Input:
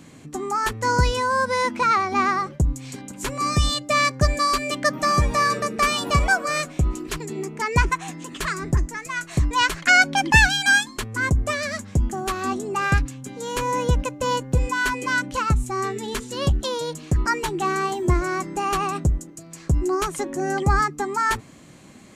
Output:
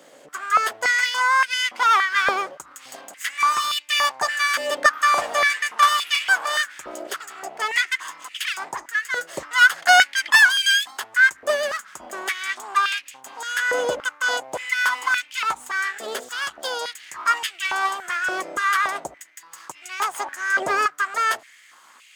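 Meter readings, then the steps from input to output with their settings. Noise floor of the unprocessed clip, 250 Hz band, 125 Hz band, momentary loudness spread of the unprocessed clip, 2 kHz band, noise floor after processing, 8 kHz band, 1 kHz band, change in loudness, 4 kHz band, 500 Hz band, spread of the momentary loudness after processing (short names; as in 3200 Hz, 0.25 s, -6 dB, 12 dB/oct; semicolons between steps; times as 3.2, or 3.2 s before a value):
-45 dBFS, -17.0 dB, under -30 dB, 10 LU, +4.0 dB, -51 dBFS, +0.5 dB, +1.0 dB, +1.5 dB, +4.0 dB, -3.5 dB, 16 LU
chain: minimum comb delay 0.62 ms; stepped high-pass 3.5 Hz 560–2500 Hz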